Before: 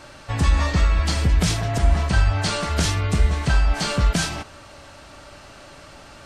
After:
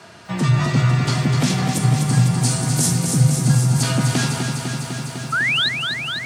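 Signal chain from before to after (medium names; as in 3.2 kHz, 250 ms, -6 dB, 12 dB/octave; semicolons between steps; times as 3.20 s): 1.73–3.83 s: FFT filter 120 Hz 0 dB, 2.9 kHz -10 dB, 9.3 kHz +14 dB; 5.32–5.69 s: painted sound rise 1.2–4.2 kHz -19 dBFS; frequency shift +75 Hz; bit-crushed delay 251 ms, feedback 80%, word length 9-bit, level -6 dB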